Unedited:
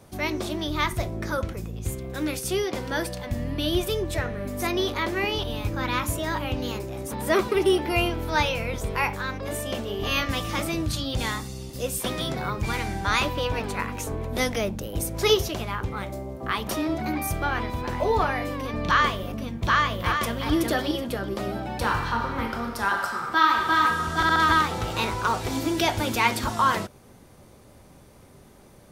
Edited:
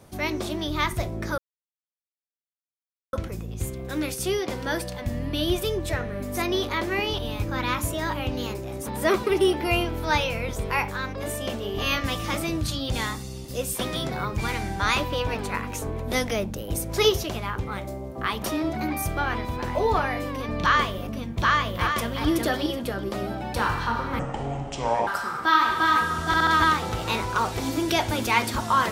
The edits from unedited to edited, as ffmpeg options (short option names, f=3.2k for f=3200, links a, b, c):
-filter_complex "[0:a]asplit=4[a][b][c][d];[a]atrim=end=1.38,asetpts=PTS-STARTPTS,afade=t=out:st=1.376:d=0.004:c=hsin,apad=pad_dur=1.75[e];[b]atrim=start=1.38:end=22.444,asetpts=PTS-STARTPTS,afade=t=in:d=0.004:c=hsin[f];[c]atrim=start=22.44:end=22.96,asetpts=PTS-STARTPTS,asetrate=26019,aresample=44100[g];[d]atrim=start=22.956[h];[e][f]concat=n=2:v=0:a=1[i];[i][g]acrossfade=d=0.004:c1=hsin:c2=hsin[j];[j][h]acrossfade=d=0.004:c1=hsin:c2=hsin"